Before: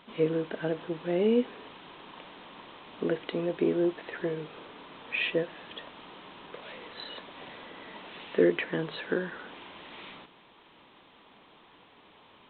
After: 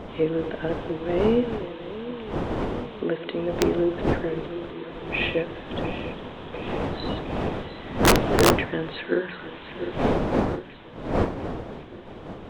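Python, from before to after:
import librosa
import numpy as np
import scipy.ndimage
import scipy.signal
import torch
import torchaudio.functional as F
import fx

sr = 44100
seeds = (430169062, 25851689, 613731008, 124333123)

y = fx.reverse_delay_fb(x, sr, ms=352, feedback_pct=77, wet_db=-12)
y = fx.dmg_wind(y, sr, seeds[0], corner_hz=490.0, level_db=-31.0)
y = fx.hum_notches(y, sr, base_hz=60, count=3)
y = (np.mod(10.0 ** (11.5 / 20.0) * y + 1.0, 2.0) - 1.0) / 10.0 ** (11.5 / 20.0)
y = y * librosa.db_to_amplitude(3.0)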